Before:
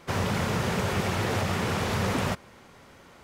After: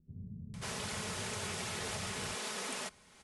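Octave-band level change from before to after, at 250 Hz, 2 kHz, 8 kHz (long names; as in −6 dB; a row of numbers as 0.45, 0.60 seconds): −15.5, −10.0, −1.0 decibels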